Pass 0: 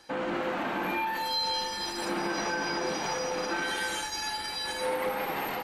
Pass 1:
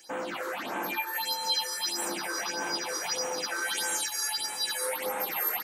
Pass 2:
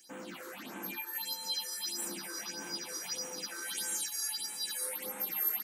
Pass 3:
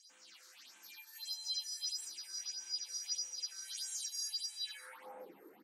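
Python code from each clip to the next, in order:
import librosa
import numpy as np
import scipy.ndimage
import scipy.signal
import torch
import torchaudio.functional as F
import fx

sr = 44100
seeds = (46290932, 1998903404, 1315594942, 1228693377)

y1 = fx.riaa(x, sr, side='recording')
y1 = fx.phaser_stages(y1, sr, stages=6, low_hz=190.0, high_hz=4600.0, hz=1.6, feedback_pct=25)
y2 = fx.curve_eq(y1, sr, hz=(130.0, 190.0, 680.0, 14000.0), db=(0, 8, -7, 8))
y2 = F.gain(torch.from_numpy(y2), -9.0).numpy()
y3 = fx.filter_sweep_bandpass(y2, sr, from_hz=5100.0, to_hz=330.0, start_s=4.51, end_s=5.37, q=2.6)
y3 = F.gain(torch.from_numpy(y3), 1.0).numpy()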